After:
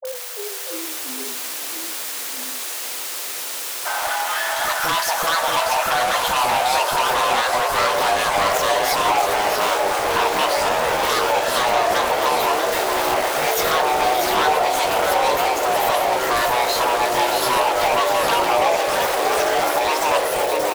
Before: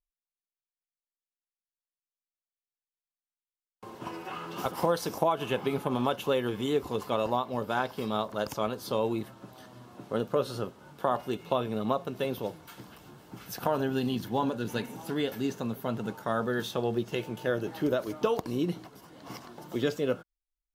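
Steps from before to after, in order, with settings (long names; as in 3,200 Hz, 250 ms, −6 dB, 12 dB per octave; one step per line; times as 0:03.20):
converter with a step at zero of −32.5 dBFS
in parallel at 0 dB: downward compressor, threshold −38 dBFS, peak gain reduction 16.5 dB
on the sum: frequency shifter +490 Hz
wave folding −22 dBFS
on a send: multi-tap delay 62/640 ms −17.5/−5.5 dB
on the sum: delay with pitch and tempo change per echo 344 ms, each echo −4 semitones, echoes 3
all-pass dispersion highs, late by 52 ms, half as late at 690 Hz
level +6.5 dB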